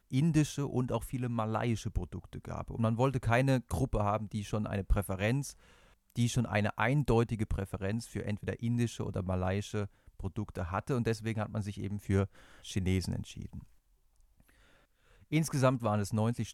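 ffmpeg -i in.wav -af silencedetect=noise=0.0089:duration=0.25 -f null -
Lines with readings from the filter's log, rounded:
silence_start: 5.52
silence_end: 6.10 | silence_duration: 0.58
silence_start: 9.86
silence_end: 10.20 | silence_duration: 0.34
silence_start: 12.26
silence_end: 12.65 | silence_duration: 0.39
silence_start: 13.59
silence_end: 15.32 | silence_duration: 1.73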